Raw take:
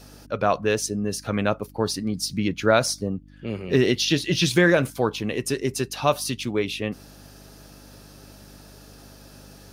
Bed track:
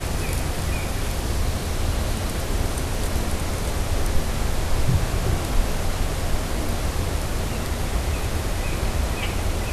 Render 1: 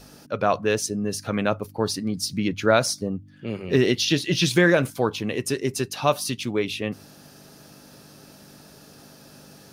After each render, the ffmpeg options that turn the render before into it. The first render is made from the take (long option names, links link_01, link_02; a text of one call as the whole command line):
ffmpeg -i in.wav -af "bandreject=frequency=50:width_type=h:width=4,bandreject=frequency=100:width_type=h:width=4" out.wav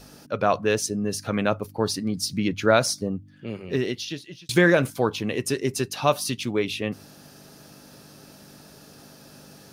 ffmpeg -i in.wav -filter_complex "[0:a]asplit=2[link_01][link_02];[link_01]atrim=end=4.49,asetpts=PTS-STARTPTS,afade=type=out:start_time=3.1:duration=1.39[link_03];[link_02]atrim=start=4.49,asetpts=PTS-STARTPTS,afade=type=in:duration=0.004:curve=hsin[link_04];[link_03][link_04]concat=n=2:v=0:a=1" out.wav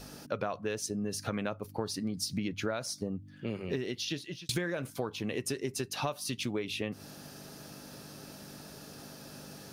ffmpeg -i in.wav -af "acompressor=threshold=-30dB:ratio=16" out.wav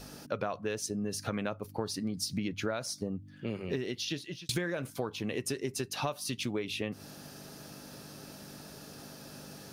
ffmpeg -i in.wav -af anull out.wav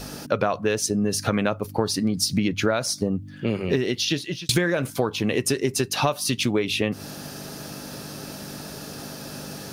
ffmpeg -i in.wav -af "volume=11.5dB" out.wav